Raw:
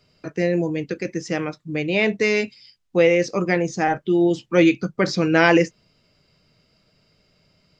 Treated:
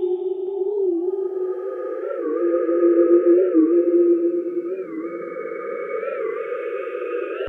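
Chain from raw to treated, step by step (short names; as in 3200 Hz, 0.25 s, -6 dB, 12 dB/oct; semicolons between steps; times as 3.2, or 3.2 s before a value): sine-wave speech; notches 60/120/180/240/300/360 Hz; treble ducked by the level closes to 420 Hz, closed at -16.5 dBFS; low shelf 360 Hz -9.5 dB; in parallel at +0.5 dB: compressor, threshold -30 dBFS, peak gain reduction 17 dB; on the sum: sample gate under -58.5 dBFS; Paulstretch 7.5×, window 0.50 s, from 4.18; on a send: narrowing echo 0.488 s, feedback 43%, band-pass 820 Hz, level -3.5 dB; on the sum: speed mistake 24 fps film run at 25 fps; record warp 45 rpm, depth 160 cents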